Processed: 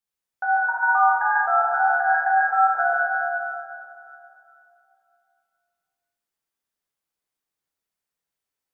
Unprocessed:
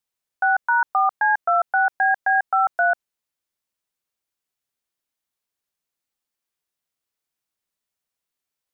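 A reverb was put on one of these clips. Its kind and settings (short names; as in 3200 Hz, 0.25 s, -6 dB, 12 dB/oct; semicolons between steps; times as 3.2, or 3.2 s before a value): plate-style reverb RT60 2.8 s, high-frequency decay 0.45×, DRR -6.5 dB; gain -7.5 dB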